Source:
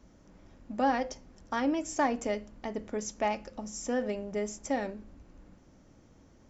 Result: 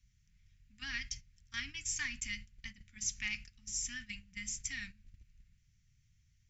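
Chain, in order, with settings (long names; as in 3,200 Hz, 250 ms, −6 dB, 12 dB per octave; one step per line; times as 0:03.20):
Chebyshev band-stop filter 130–2,100 Hz, order 3
noise gate −50 dBFS, range −12 dB
level +4.5 dB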